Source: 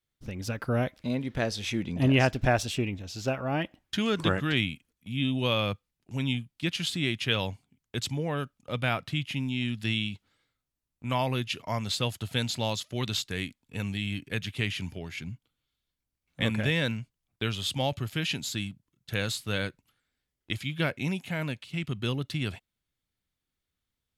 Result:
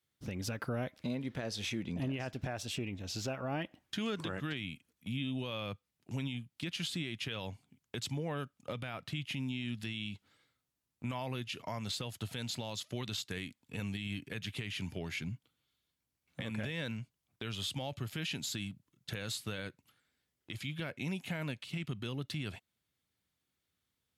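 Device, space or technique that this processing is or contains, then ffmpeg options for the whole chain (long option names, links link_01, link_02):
podcast mastering chain: -af "highpass=85,acompressor=threshold=-38dB:ratio=3,alimiter=level_in=5.5dB:limit=-24dB:level=0:latency=1:release=32,volume=-5.5dB,volume=2.5dB" -ar 44100 -c:a libmp3lame -b:a 112k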